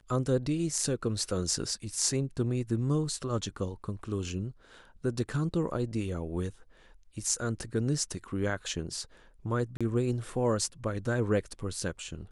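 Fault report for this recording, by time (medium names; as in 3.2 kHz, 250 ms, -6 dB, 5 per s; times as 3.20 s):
9.77–9.81 s: dropout 36 ms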